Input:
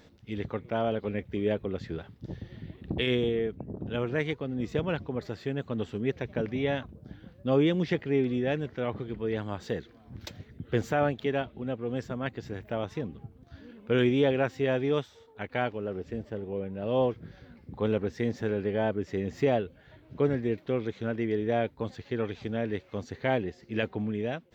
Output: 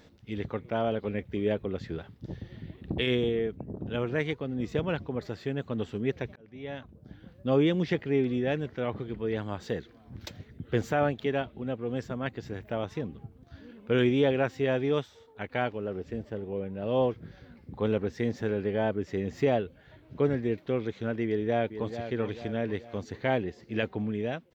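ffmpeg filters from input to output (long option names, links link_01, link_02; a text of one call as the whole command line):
ffmpeg -i in.wav -filter_complex "[0:a]asplit=2[link_01][link_02];[link_02]afade=type=in:start_time=21.26:duration=0.01,afade=type=out:start_time=21.98:duration=0.01,aecho=0:1:440|880|1320|1760|2200:0.316228|0.158114|0.0790569|0.0395285|0.0197642[link_03];[link_01][link_03]amix=inputs=2:normalize=0,asplit=2[link_04][link_05];[link_04]atrim=end=6.36,asetpts=PTS-STARTPTS,afade=type=out:start_time=6.356:duration=0.004:curve=hsin[link_06];[link_05]atrim=start=6.36,asetpts=PTS-STARTPTS,afade=type=in:duration=1.01[link_07];[link_06][link_07]concat=n=2:v=0:a=1" out.wav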